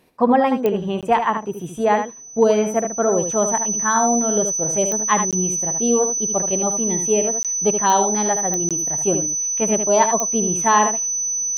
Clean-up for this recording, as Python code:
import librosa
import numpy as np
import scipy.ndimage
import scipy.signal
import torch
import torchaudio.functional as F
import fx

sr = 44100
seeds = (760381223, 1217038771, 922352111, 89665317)

y = fx.fix_declick_ar(x, sr, threshold=10.0)
y = fx.notch(y, sr, hz=6000.0, q=30.0)
y = fx.fix_interpolate(y, sr, at_s=(1.01, 5.31, 7.43, 8.69), length_ms=17.0)
y = fx.fix_echo_inverse(y, sr, delay_ms=76, level_db=-7.5)